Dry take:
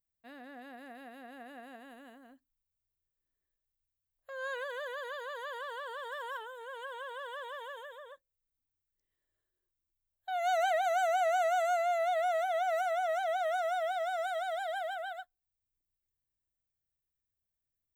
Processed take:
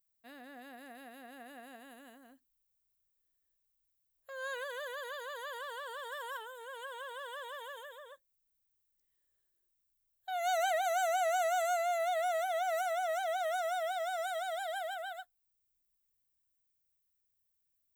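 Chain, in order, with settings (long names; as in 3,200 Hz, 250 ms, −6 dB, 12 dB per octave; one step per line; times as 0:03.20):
high-shelf EQ 5,000 Hz +11.5 dB
level −2.5 dB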